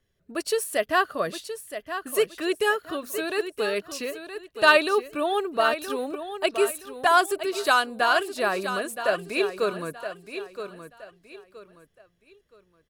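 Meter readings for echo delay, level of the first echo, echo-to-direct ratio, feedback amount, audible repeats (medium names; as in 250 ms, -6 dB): 971 ms, -10.0 dB, -9.5 dB, 30%, 3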